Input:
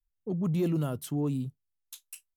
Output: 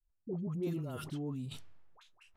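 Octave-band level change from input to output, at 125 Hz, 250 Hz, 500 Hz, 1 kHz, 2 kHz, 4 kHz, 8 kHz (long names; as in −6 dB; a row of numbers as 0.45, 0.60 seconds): −8.5, −8.5, −7.0, −7.0, −4.5, −3.0, −12.0 decibels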